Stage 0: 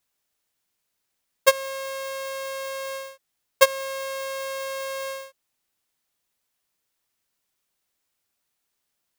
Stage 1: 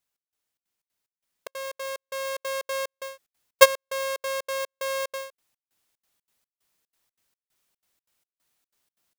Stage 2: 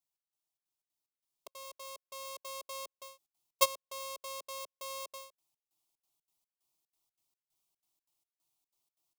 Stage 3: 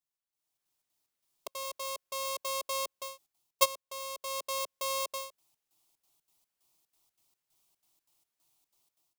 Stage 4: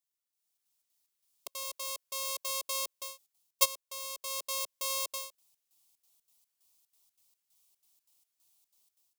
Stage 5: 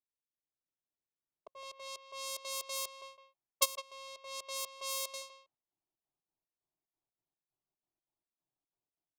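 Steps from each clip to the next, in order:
vocal rider 2 s; step gate "xx..xxx.xx." 184 bpm -60 dB; gain -1 dB
fixed phaser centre 330 Hz, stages 8; gain -7 dB
AGC gain up to 13 dB; gain -4 dB
high shelf 2500 Hz +11 dB; gain -7 dB
low-pass opened by the level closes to 640 Hz, open at -31.5 dBFS; speakerphone echo 0.16 s, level -10 dB; gain -3 dB

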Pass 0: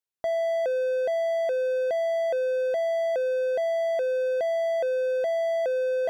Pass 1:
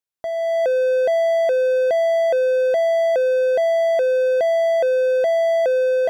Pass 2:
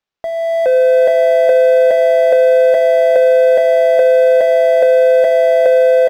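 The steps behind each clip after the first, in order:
AGC gain up to 8 dB
echo 0.424 s -4 dB; on a send at -16 dB: reverb RT60 0.35 s, pre-delay 4 ms; on the sum: decimation joined by straight lines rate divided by 4×; gain +6 dB

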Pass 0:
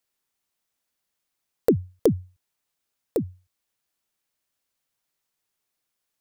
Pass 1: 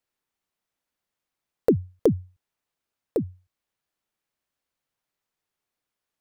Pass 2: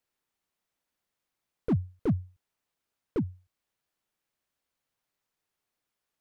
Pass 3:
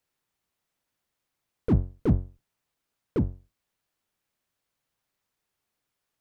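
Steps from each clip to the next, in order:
high shelf 3600 Hz -9 dB
slew limiter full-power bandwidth 21 Hz
octaver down 1 oct, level -1 dB; gain +2.5 dB

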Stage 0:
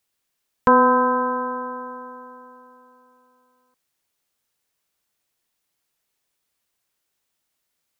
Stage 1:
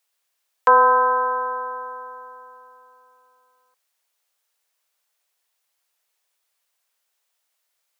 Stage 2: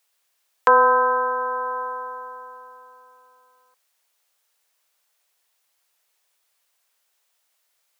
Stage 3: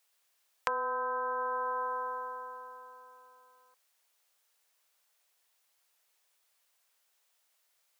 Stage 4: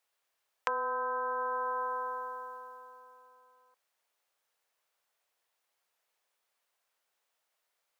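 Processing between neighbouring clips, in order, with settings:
HPF 500 Hz 24 dB/oct; gain +2 dB
dynamic EQ 890 Hz, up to -6 dB, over -28 dBFS, Q 0.76; gain +4 dB
compressor 16:1, threshold -26 dBFS, peak gain reduction 16 dB; gain -3.5 dB
mismatched tape noise reduction decoder only

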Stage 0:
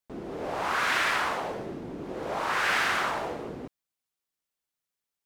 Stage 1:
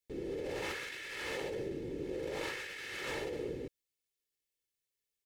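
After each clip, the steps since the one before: band shelf 1000 Hz -14.5 dB 1.3 oct; comb 2.3 ms, depth 54%; negative-ratio compressor -35 dBFS, ratio -1; gain -5 dB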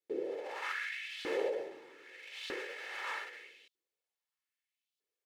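high shelf 3800 Hz -10 dB; LFO high-pass saw up 0.8 Hz 320–3800 Hz; gain +1 dB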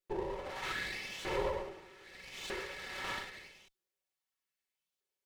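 minimum comb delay 5.3 ms; gain +1.5 dB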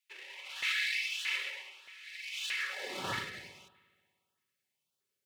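high-pass sweep 2400 Hz -> 110 Hz, 2.57–3.09; on a send at -14 dB: reverb RT60 1.7 s, pre-delay 58 ms; on the sum: LFO notch saw up 1.6 Hz 600–2300 Hz; gain +4.5 dB

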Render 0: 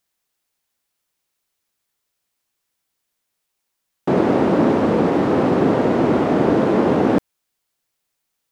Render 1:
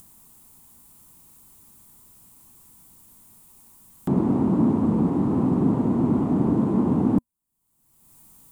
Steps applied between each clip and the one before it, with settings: EQ curve 240 Hz 0 dB, 550 Hz -18 dB, 1000 Hz -8 dB, 1600 Hz -22 dB, 5500 Hz -20 dB, 8200 Hz -7 dB; upward compressor, threshold -26 dBFS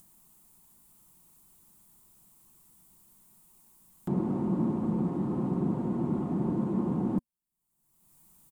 comb 5.6 ms, depth 44%; gain -9 dB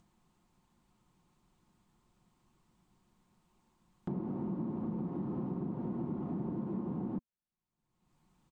compressor 6:1, threshold -32 dBFS, peak gain reduction 9 dB; air absorption 170 m; gain -1.5 dB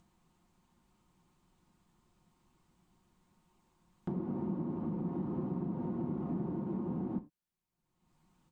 non-linear reverb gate 0.12 s falling, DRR 8 dB

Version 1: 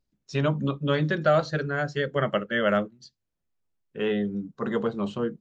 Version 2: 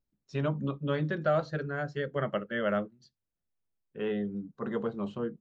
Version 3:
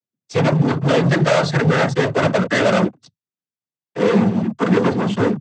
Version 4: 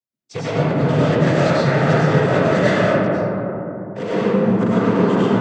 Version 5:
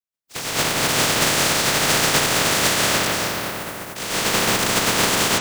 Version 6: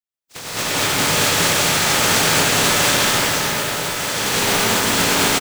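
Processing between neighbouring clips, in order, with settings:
high shelf 3100 Hz -9.5 dB; gain -5.5 dB
sample leveller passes 5; noise vocoder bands 16; gain +5.5 dB
compressor, threshold -17 dBFS, peak gain reduction 7.5 dB; reverb RT60 3.6 s, pre-delay 65 ms, DRR -10 dB; gain -6 dB
spectral contrast lowered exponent 0.2; gain -3 dB
echo 1.199 s -7.5 dB; non-linear reverb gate 0.26 s rising, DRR -5.5 dB; gain -4.5 dB

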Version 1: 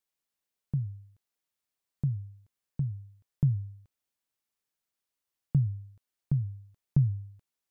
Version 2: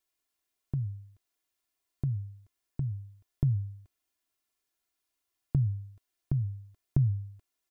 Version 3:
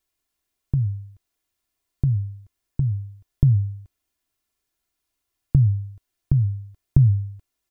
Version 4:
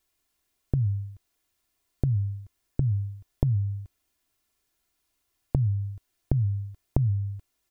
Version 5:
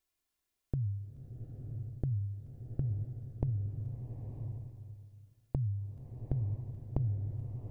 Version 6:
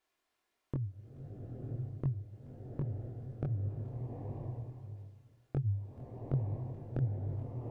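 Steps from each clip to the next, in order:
comb 2.9 ms; gain +2 dB
low shelf 170 Hz +10.5 dB; gain +3.5 dB
compressor 10:1, threshold -24 dBFS, peak gain reduction 15 dB; gain +3.5 dB
bloom reverb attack 0.98 s, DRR 4 dB; gain -9 dB
overdrive pedal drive 23 dB, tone 1000 Hz, clips at -16 dBFS; chorus voices 2, 1.5 Hz, delay 23 ms, depth 3 ms; gain +1 dB

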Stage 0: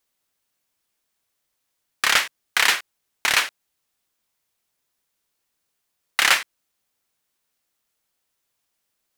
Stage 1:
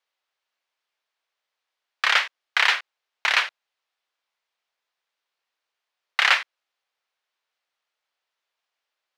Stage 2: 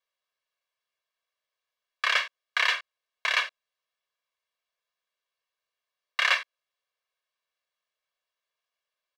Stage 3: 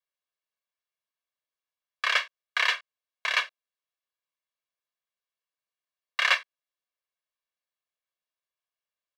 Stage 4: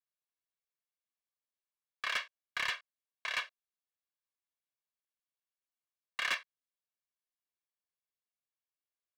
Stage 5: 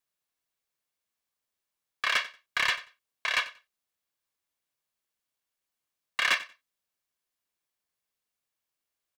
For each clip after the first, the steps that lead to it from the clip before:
three-band isolator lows -23 dB, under 470 Hz, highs -22 dB, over 4800 Hz
comb 1.8 ms, depth 90%; gain -7.5 dB
upward expander 1.5:1, over -39 dBFS; gain +1.5 dB
hard clip -17.5 dBFS, distortion -14 dB; gain -9 dB
feedback echo 92 ms, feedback 18%, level -17.5 dB; gain +8 dB

